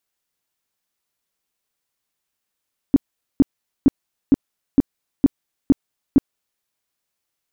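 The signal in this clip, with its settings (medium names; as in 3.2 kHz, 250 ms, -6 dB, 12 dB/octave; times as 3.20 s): tone bursts 275 Hz, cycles 6, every 0.46 s, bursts 8, -7 dBFS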